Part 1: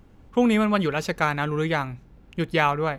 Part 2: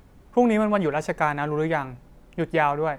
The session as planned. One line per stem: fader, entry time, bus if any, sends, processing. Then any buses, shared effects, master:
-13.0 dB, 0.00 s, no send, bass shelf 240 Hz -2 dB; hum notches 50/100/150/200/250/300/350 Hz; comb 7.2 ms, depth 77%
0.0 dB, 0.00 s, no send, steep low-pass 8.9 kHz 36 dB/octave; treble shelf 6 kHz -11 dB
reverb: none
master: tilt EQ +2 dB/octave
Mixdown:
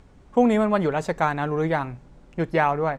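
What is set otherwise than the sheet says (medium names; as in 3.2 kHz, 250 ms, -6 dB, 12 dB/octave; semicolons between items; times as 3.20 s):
stem 2: missing treble shelf 6 kHz -11 dB; master: missing tilt EQ +2 dB/octave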